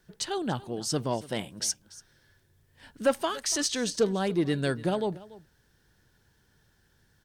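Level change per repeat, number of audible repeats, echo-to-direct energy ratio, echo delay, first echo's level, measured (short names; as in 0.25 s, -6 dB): no steady repeat, 1, -19.5 dB, 0.287 s, -19.5 dB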